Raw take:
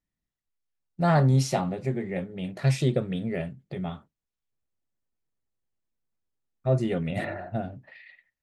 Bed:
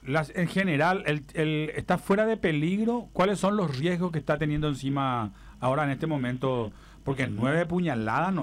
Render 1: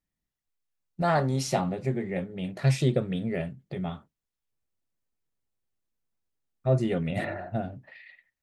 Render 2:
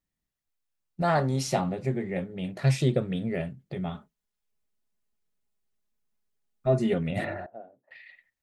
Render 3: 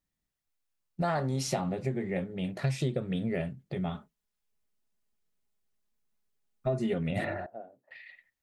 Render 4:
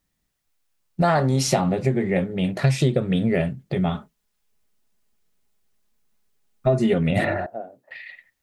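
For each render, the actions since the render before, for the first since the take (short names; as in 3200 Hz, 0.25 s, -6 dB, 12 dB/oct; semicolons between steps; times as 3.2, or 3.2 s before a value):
1.02–1.48 bell 130 Hz -8.5 dB 1.7 oct
3.94–6.94 comb 4.8 ms; 7.46–7.91 ladder band-pass 600 Hz, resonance 35%
compressor 6:1, threshold -26 dBFS, peak gain reduction 8.5 dB
gain +10.5 dB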